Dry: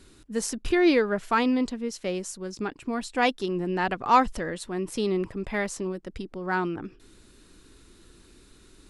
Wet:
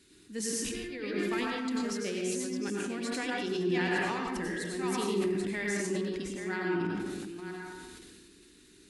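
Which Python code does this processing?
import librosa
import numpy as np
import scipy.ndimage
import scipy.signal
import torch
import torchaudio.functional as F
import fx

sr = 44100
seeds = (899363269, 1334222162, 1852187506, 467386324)

y = fx.reverse_delay(x, sr, ms=501, wet_db=-9)
y = fx.highpass(y, sr, hz=280.0, slope=6)
y = fx.band_shelf(y, sr, hz=840.0, db=-10.0, octaves=1.7)
y = fx.over_compress(y, sr, threshold_db=-29.0, ratio=-0.5)
y = fx.rev_plate(y, sr, seeds[0], rt60_s=0.9, hf_ratio=0.5, predelay_ms=80, drr_db=-2.0)
y = fx.sustainer(y, sr, db_per_s=22.0)
y = y * librosa.db_to_amplitude(-6.5)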